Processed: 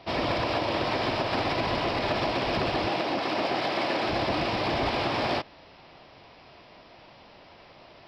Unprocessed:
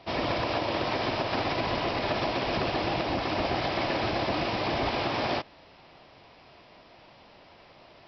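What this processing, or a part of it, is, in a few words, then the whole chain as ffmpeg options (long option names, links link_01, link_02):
parallel distortion: -filter_complex "[0:a]asplit=2[link_01][link_02];[link_02]asoftclip=type=hard:threshold=-30.5dB,volume=-10.5dB[link_03];[link_01][link_03]amix=inputs=2:normalize=0,asettb=1/sr,asplit=3[link_04][link_05][link_06];[link_04]atrim=end=2.884[link_07];[link_05]atrim=start=2.88:end=4.09,asetpts=PTS-STARTPTS,afade=type=in:duration=0.004:curve=qsin,afade=type=out:start_time=1.206:duration=0.004:curve=qsin,highpass=200[link_08];[link_06]atrim=start=4.086[link_09];[link_07][link_08]acrossfade=duration=0.004:curve1=hsin:curve2=qsin[link_10];[link_10][link_09]acrossfade=duration=0.004:curve1=qsin:curve2=hsin"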